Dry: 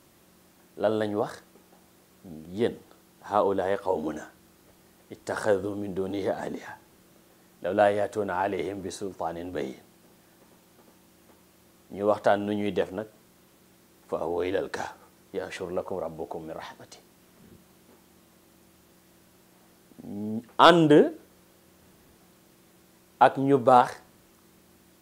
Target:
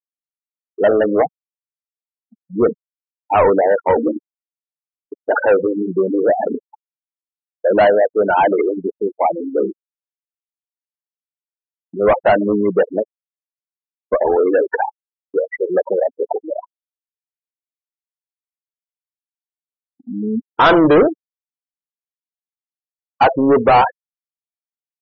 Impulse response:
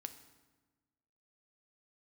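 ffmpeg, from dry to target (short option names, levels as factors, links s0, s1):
-filter_complex "[0:a]afftfilt=real='re*gte(hypot(re,im),0.0891)':imag='im*gte(hypot(re,im),0.0891)':win_size=1024:overlap=0.75,asplit=2[s0][s1];[s1]highpass=f=720:p=1,volume=28.2,asoftclip=type=tanh:threshold=0.75[s2];[s0][s2]amix=inputs=2:normalize=0,lowpass=f=2000:p=1,volume=0.501,afftfilt=real='re*gte(hypot(re,im),0.0794)':imag='im*gte(hypot(re,im),0.0794)':win_size=1024:overlap=0.75,agate=range=0.0224:threshold=0.0158:ratio=3:detection=peak"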